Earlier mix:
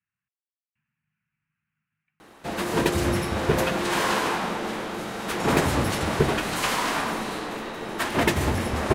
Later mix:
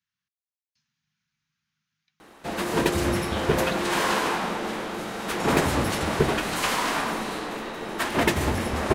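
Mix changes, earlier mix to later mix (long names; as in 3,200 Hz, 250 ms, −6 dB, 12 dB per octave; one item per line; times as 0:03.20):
speech: remove Chebyshev low-pass filter 2,700 Hz, order 5
master: add parametric band 110 Hz −3.5 dB 0.77 octaves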